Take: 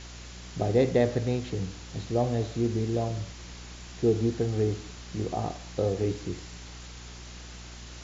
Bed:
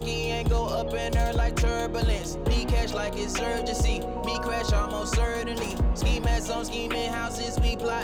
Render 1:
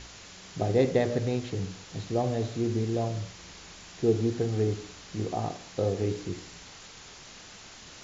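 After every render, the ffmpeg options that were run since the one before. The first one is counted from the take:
-af "bandreject=f=60:t=h:w=4,bandreject=f=120:t=h:w=4,bandreject=f=180:t=h:w=4,bandreject=f=240:t=h:w=4,bandreject=f=300:t=h:w=4,bandreject=f=360:t=h:w=4,bandreject=f=420:t=h:w=4,bandreject=f=480:t=h:w=4,bandreject=f=540:t=h:w=4,bandreject=f=600:t=h:w=4"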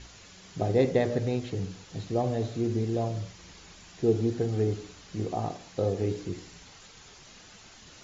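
-af "afftdn=nr=6:nf=-48"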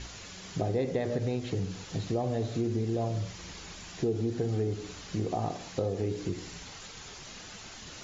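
-filter_complex "[0:a]asplit=2[s0][s1];[s1]alimiter=limit=0.0891:level=0:latency=1,volume=0.891[s2];[s0][s2]amix=inputs=2:normalize=0,acompressor=threshold=0.0355:ratio=3"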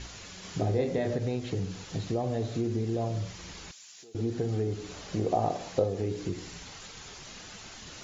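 -filter_complex "[0:a]asettb=1/sr,asplit=3[s0][s1][s2];[s0]atrim=end=0.404[s3];[s1]atrim=start=0.4:end=1.14,asetpts=PTS-STARTPTS,afade=t=in:d=0.004:c=qsin,afade=t=out:st=0.736:d=0.004:c=qsin,asplit=2[s4][s5];[s5]adelay=28,volume=0.631[s6];[s4][s6]amix=inputs=2:normalize=0,atrim=end_sample=32634[s7];[s2]atrim=start=1.136[s8];[s3][s7]acrossfade=d=0.004:c1=hsin:c2=qsin[s9];[s9][s8]acrossfade=d=0.004:c1=qsin:c2=hsin,asettb=1/sr,asplit=3[s10][s11][s12];[s10]atrim=end=3.714[s13];[s11]atrim=start=3.71:end=4.15,asetpts=PTS-STARTPTS,afade=t=in:d=0.004:c=qsin,afade=t=out:st=0.436:d=0.004:c=qsin,aderivative[s14];[s12]atrim=start=4.146[s15];[s13][s14]acrossfade=d=0.004:c1=hsin:c2=qsin[s16];[s16][s15]acrossfade=d=0.004:c1=qsin:c2=hsin,asettb=1/sr,asplit=3[s17][s18][s19];[s17]atrim=end=4.914[s20];[s18]atrim=start=4.91:end=5.84,asetpts=PTS-STARTPTS,afade=t=in:d=0.004:c=qsin,afade=t=out:st=0.926:d=0.004:c=qsin,equalizer=f=590:w=1.2:g=7.5[s21];[s19]atrim=start=5.836[s22];[s20][s21]acrossfade=d=0.004:c1=hsin:c2=qsin[s23];[s23][s22]acrossfade=d=0.004:c1=qsin:c2=hsin"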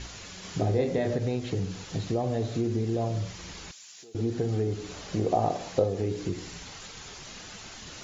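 -af "volume=1.26"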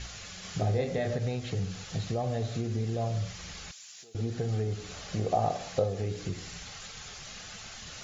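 -af "equalizer=f=320:t=o:w=0.84:g=-10.5,bandreject=f=960:w=8"

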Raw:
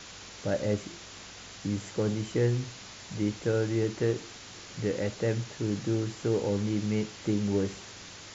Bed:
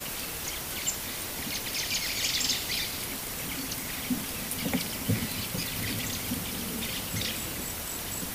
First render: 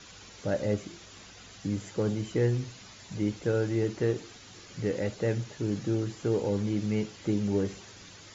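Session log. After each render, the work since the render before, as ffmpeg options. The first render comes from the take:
-af "afftdn=nr=8:nf=-47"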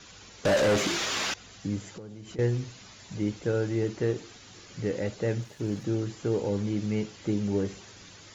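-filter_complex "[0:a]asettb=1/sr,asplit=3[s0][s1][s2];[s0]atrim=end=0.454[s3];[s1]atrim=start=0.45:end=1.34,asetpts=PTS-STARTPTS,afade=t=in:d=0.004:c=qsin,afade=t=out:st=0.886:d=0.004:c=qsin,asplit=2[s4][s5];[s5]highpass=f=720:p=1,volume=39.8,asoftclip=type=tanh:threshold=0.158[s6];[s4][s6]amix=inputs=2:normalize=0,lowpass=f=4000:p=1,volume=0.501[s7];[s2]atrim=start=1.336[s8];[s3][s7]acrossfade=d=0.004:c1=hsin:c2=qsin[s9];[s9][s8]acrossfade=d=0.004:c1=qsin:c2=hsin,asettb=1/sr,asplit=3[s10][s11][s12];[s10]atrim=end=1.844[s13];[s11]atrim=start=1.84:end=2.39,asetpts=PTS-STARTPTS,afade=t=in:d=0.004:c=qsin,afade=t=out:st=0.546:d=0.004:c=qsin,acompressor=threshold=0.0126:ratio=16:attack=3.2:release=140:knee=1:detection=peak[s14];[s12]atrim=start=2.386[s15];[s13][s14]acrossfade=d=0.004:c1=hsin:c2=qsin[s16];[s16][s15]acrossfade=d=0.004:c1=qsin:c2=hsin,asplit=3[s17][s18][s19];[s17]afade=t=out:st=5.39:d=0.02[s20];[s18]aeval=exprs='sgn(val(0))*max(abs(val(0))-0.002,0)':c=same,afade=t=in:st=5.39:d=0.02,afade=t=out:st=5.84:d=0.02[s21];[s19]afade=t=in:st=5.84:d=0.02[s22];[s20][s21][s22]amix=inputs=3:normalize=0"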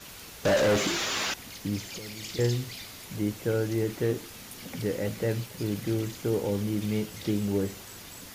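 -filter_complex "[1:a]volume=0.266[s0];[0:a][s0]amix=inputs=2:normalize=0"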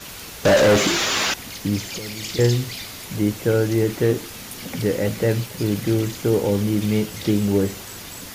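-af "volume=2.66"

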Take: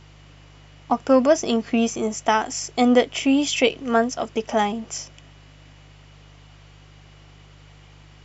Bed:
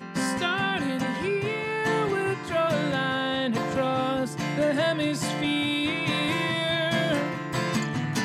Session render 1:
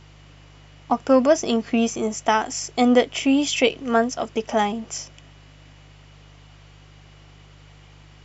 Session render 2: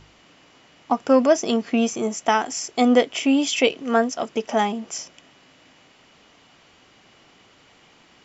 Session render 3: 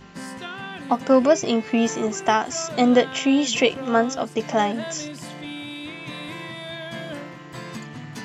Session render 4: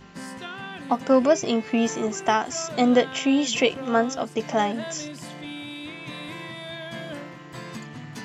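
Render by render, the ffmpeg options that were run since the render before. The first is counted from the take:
-af anull
-af "bandreject=f=50:t=h:w=4,bandreject=f=100:t=h:w=4,bandreject=f=150:t=h:w=4"
-filter_complex "[1:a]volume=0.376[s0];[0:a][s0]amix=inputs=2:normalize=0"
-af "volume=0.794"

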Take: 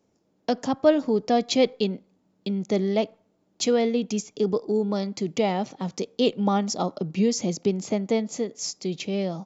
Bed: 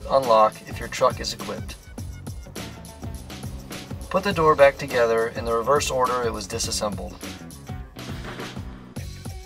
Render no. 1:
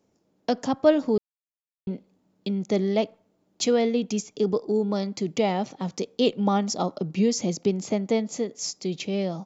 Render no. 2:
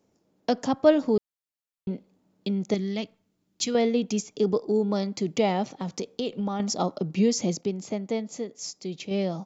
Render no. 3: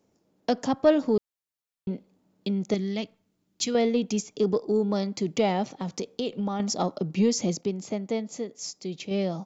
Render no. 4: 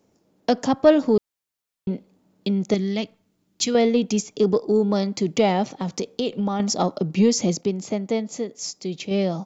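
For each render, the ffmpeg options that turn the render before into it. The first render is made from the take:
-filter_complex "[0:a]asplit=3[s0][s1][s2];[s0]atrim=end=1.18,asetpts=PTS-STARTPTS,afade=t=out:st=1.176:d=0.004:c=hsin[s3];[s1]atrim=start=1.18:end=1.87,asetpts=PTS-STARTPTS,volume=0[s4];[s2]atrim=start=1.87,asetpts=PTS-STARTPTS,afade=t=in:d=0.004:c=hsin[s5];[s3][s4][s5]concat=n=3:v=0:a=1"
-filter_complex "[0:a]asettb=1/sr,asplit=3[s0][s1][s2];[s0]atrim=end=2.744[s3];[s1]atrim=start=2.74:end=3.75,asetpts=PTS-STARTPTS,afade=t=in:d=0.004:c=qsin,afade=t=out:st=1.006:d=0.004:c=qsin,equalizer=f=630:t=o:w=1.9:g=-13.5[s4];[s2]atrim=start=3.746[s5];[s3][s4]acrossfade=d=0.004:c1=hsin:c2=qsin[s6];[s6][s5]acrossfade=d=0.004:c1=qsin:c2=hsin,asettb=1/sr,asplit=3[s7][s8][s9];[s7]atrim=end=5.664[s10];[s8]atrim=start=5.66:end=6.6,asetpts=PTS-STARTPTS,afade=t=in:d=0.004:c=qsin,afade=t=out:st=0.936:d=0.004:c=qsin,acompressor=threshold=0.0562:ratio=6:attack=3.2:release=140:knee=1:detection=peak[s11];[s9]atrim=start=6.596[s12];[s10][s11]acrossfade=d=0.004:c1=hsin:c2=qsin[s13];[s13][s12]acrossfade=d=0.004:c1=qsin:c2=hsin,asplit=3[s14][s15][s16];[s14]atrim=end=7.612[s17];[s15]atrim=start=7.608:end=9.112,asetpts=PTS-STARTPTS,volume=0.562[s18];[s16]atrim=start=9.108[s19];[s17][s18]acrossfade=d=0.004:c1=hsin:c2=hsin[s20];[s20][s19]acrossfade=d=0.004:c1=hsin:c2=hsin"
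-af "asoftclip=type=tanh:threshold=0.355"
-af "volume=1.78"

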